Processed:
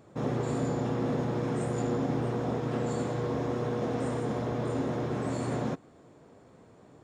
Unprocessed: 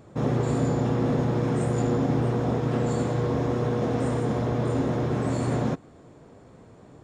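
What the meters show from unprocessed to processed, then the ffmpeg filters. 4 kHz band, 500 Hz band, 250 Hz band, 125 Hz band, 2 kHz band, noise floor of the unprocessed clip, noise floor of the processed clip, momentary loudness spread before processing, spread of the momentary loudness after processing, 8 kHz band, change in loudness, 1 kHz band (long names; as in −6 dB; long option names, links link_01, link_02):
−4.0 dB, −4.5 dB, −5.5 dB, −7.5 dB, −4.0 dB, −51 dBFS, −57 dBFS, 2 LU, 2 LU, −4.0 dB, −5.5 dB, −4.0 dB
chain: -af "lowshelf=frequency=110:gain=-8.5,volume=-4dB"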